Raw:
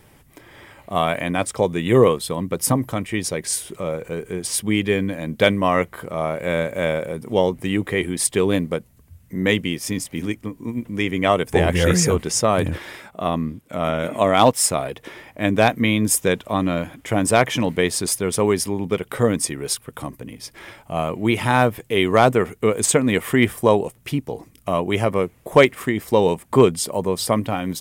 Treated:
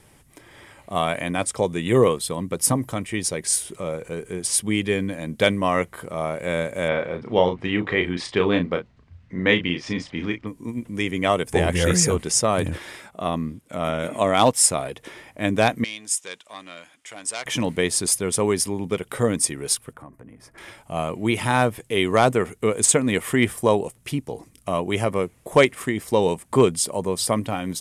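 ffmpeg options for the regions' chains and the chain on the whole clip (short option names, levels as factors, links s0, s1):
-filter_complex "[0:a]asettb=1/sr,asplit=3[s0][s1][s2];[s0]atrim=end=6.884[s3];[s1]atrim=start=6.88:end=10.47,asetpts=PTS-STARTPTS,afade=t=in:d=0.004:c=qsin,afade=t=out:st=3.586:d=0.004:c=qsin,lowpass=f=4500:w=0.5412,lowpass=f=4500:w=1.3066,equalizer=f=1300:t=o:w=2.1:g=5.5,asplit=2[s4][s5];[s5]adelay=34,volume=0.447[s6];[s4][s6]amix=inputs=2:normalize=0,atrim=end_sample=158319[s7];[s2]atrim=start=10.466[s8];[s3][s7]acrossfade=d=0.004:c1=hsin:c2=qsin[s9];[s9][s8]acrossfade=d=0.004:c1=qsin:c2=hsin,asettb=1/sr,asplit=3[s10][s11][s12];[s10]atrim=end=15.844[s13];[s11]atrim=start=15.84:end=17.46,asetpts=PTS-STARTPTS,afade=t=in:d=0.004:c=qsin,afade=t=out:st=1.616:d=0.004:c=qsin,aemphasis=mode=reproduction:type=75fm,acontrast=63,bandpass=f=7700:t=q:w=0.89[s14];[s12]atrim=start=17.456[s15];[s13][s14]acrossfade=d=0.004:c1=hsin:c2=qsin[s16];[s16][s15]acrossfade=d=0.004:c1=qsin:c2=hsin,asettb=1/sr,asplit=3[s17][s18][s19];[s17]atrim=end=19.934[s20];[s18]atrim=start=19.93:end=20.58,asetpts=PTS-STARTPTS,afade=t=in:d=0.004:c=qsin,afade=t=out:st=0.646:d=0.004:c=qsin,highshelf=f=2300:t=q:w=1.5:g=-14,acompressor=threshold=0.00794:ratio=2:attack=3.2:release=140:knee=1:detection=peak,aeval=exprs='val(0)+0.000316*sin(2*PI*660*n/s)':c=same[s21];[s19]atrim=start=20.576[s22];[s20][s21]acrossfade=d=0.004:c1=hsin:c2=qsin[s23];[s23][s22]acrossfade=d=0.004:c1=qsin:c2=hsin,lowpass=f=11000:w=0.5412,lowpass=f=11000:w=1.3066,highshelf=f=7000:g=9.5,volume=0.708"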